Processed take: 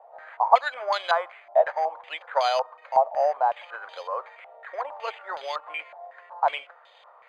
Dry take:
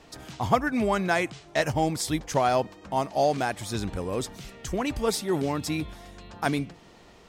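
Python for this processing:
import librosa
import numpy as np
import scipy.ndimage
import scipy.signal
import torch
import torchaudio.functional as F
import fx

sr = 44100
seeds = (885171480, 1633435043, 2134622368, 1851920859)

y = scipy.signal.sosfilt(scipy.signal.cheby1(5, 1.0, 530.0, 'highpass', fs=sr, output='sos'), x)
y = np.repeat(scipy.signal.resample_poly(y, 1, 8), 8)[:len(y)]
y = fx.filter_held_lowpass(y, sr, hz=5.4, low_hz=760.0, high_hz=3400.0)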